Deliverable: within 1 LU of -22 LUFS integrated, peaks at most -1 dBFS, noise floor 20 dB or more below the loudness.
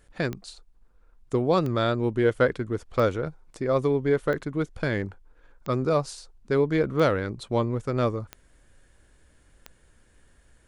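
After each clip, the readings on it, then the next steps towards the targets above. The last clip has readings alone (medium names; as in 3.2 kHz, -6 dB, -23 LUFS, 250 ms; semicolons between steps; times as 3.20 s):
clicks found 8; loudness -26.0 LUFS; peak level -10.5 dBFS; loudness target -22.0 LUFS
-> de-click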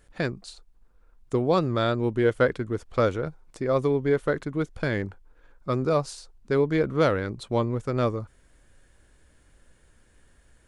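clicks found 0; loudness -26.0 LUFS; peak level -10.5 dBFS; loudness target -22.0 LUFS
-> trim +4 dB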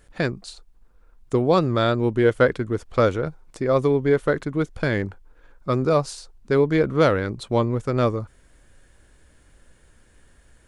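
loudness -22.0 LUFS; peak level -6.5 dBFS; noise floor -57 dBFS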